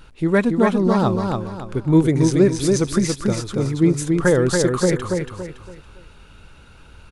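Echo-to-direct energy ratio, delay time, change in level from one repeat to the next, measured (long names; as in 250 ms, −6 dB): −3.5 dB, 281 ms, −9.5 dB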